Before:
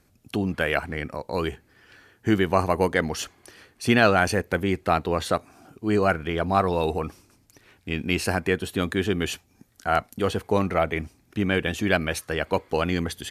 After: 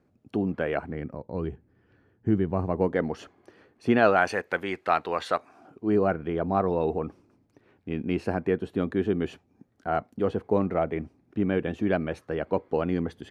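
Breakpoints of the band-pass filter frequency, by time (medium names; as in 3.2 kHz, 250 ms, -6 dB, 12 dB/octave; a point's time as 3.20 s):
band-pass filter, Q 0.57
0.76 s 340 Hz
1.27 s 140 Hz
2.57 s 140 Hz
3.03 s 360 Hz
3.86 s 360 Hz
4.37 s 1.3 kHz
5.33 s 1.3 kHz
5.98 s 310 Hz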